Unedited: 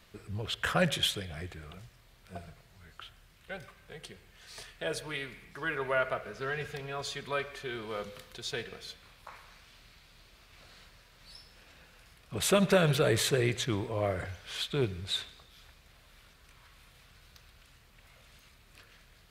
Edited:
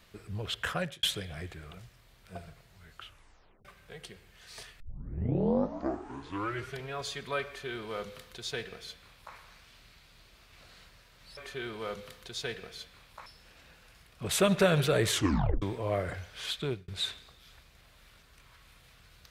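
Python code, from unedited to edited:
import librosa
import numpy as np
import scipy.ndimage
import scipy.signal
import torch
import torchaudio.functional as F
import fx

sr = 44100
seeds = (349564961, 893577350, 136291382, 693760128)

y = fx.edit(x, sr, fx.fade_out_span(start_s=0.56, length_s=0.47),
    fx.tape_stop(start_s=3.03, length_s=0.62),
    fx.tape_start(start_s=4.8, length_s=2.12),
    fx.duplicate(start_s=7.46, length_s=1.89, to_s=11.37),
    fx.tape_stop(start_s=13.21, length_s=0.52),
    fx.fade_out_span(start_s=14.7, length_s=0.29), tone=tone)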